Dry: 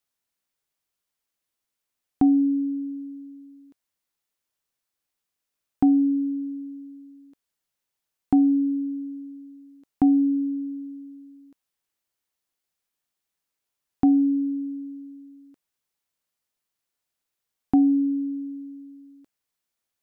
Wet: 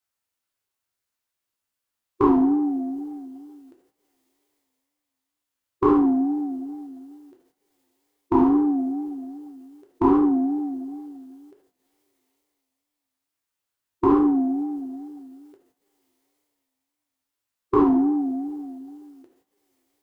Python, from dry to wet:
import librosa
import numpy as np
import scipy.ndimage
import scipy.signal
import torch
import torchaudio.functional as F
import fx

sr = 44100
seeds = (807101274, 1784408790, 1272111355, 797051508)

y = fx.peak_eq(x, sr, hz=970.0, db=2.5, octaves=0.77)
y = fx.rev_double_slope(y, sr, seeds[0], early_s=0.69, late_s=2.8, knee_db=-26, drr_db=0.0)
y = fx.wow_flutter(y, sr, seeds[1], rate_hz=2.1, depth_cents=110.0)
y = fx.formant_shift(y, sr, semitones=5)
y = y * librosa.db_to_amplitude(-3.0)